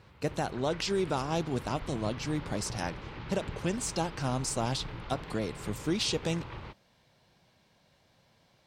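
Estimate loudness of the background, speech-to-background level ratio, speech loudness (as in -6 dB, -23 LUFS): -44.0 LUFS, 11.0 dB, -33.0 LUFS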